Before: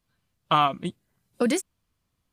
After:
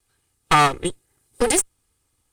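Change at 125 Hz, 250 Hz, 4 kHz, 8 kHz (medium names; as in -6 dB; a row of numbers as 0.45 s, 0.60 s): +5.5 dB, +0.5 dB, +5.0 dB, +14.5 dB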